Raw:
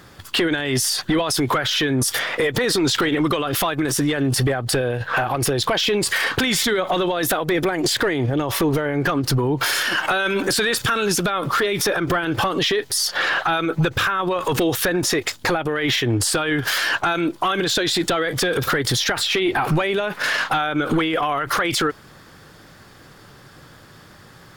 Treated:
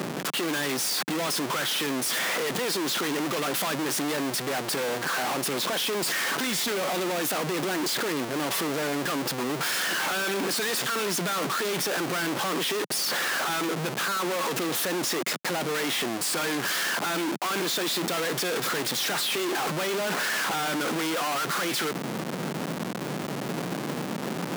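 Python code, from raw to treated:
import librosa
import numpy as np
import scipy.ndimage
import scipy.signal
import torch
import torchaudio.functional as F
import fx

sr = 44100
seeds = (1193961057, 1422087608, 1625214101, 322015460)

y = fx.schmitt(x, sr, flips_db=-41.0)
y = scipy.signal.sosfilt(scipy.signal.butter(6, 160.0, 'highpass', fs=sr, output='sos'), y)
y = y * 10.0 ** (-6.0 / 20.0)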